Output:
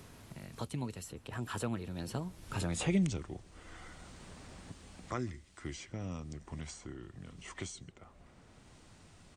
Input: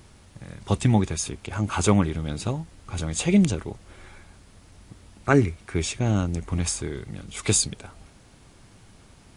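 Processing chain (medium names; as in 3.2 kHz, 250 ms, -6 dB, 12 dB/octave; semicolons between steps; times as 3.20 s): Doppler pass-by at 2.87 s, 45 m/s, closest 13 m; echo from a far wall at 23 m, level -27 dB; three bands compressed up and down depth 70%; trim -1 dB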